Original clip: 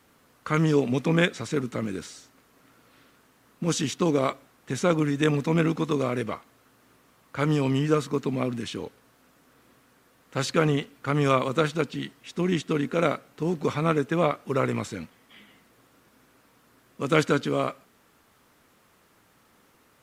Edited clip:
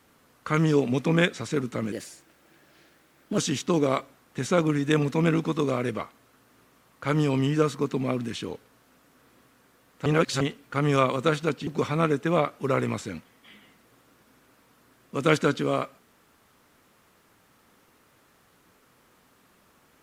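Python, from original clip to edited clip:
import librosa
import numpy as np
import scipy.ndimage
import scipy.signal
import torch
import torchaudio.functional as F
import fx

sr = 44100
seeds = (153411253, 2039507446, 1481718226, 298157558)

y = fx.edit(x, sr, fx.speed_span(start_s=1.92, length_s=1.78, speed=1.22),
    fx.reverse_span(start_s=10.38, length_s=0.35),
    fx.cut(start_s=11.99, length_s=1.54), tone=tone)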